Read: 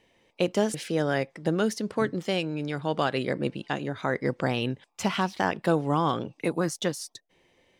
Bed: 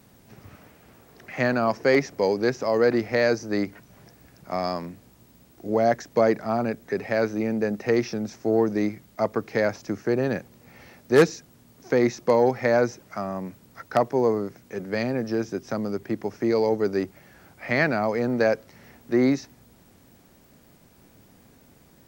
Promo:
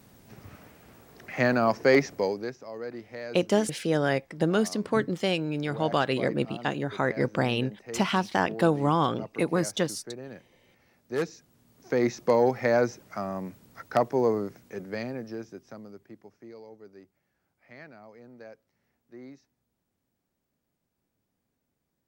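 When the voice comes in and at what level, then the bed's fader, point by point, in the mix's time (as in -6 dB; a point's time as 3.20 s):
2.95 s, +1.0 dB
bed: 2.12 s -0.5 dB
2.64 s -17 dB
10.76 s -17 dB
12.16 s -2.5 dB
14.55 s -2.5 dB
16.66 s -25.5 dB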